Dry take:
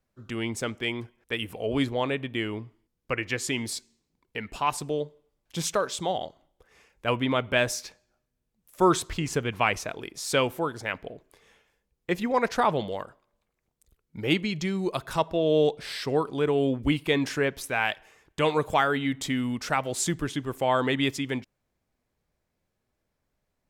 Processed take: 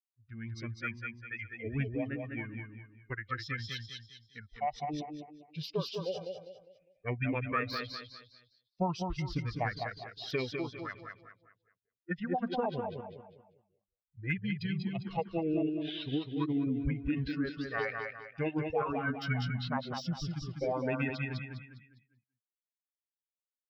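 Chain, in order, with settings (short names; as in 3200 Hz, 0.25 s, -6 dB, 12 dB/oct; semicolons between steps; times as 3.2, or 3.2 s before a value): per-bin expansion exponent 2; compressor, threshold -28 dBFS, peak gain reduction 10.5 dB; on a send: feedback echo 0.202 s, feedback 35%, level -5 dB; on the sum: downsampling 16000 Hz; de-esser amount 95%; echo 0.185 s -17.5 dB; formant shift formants -5 st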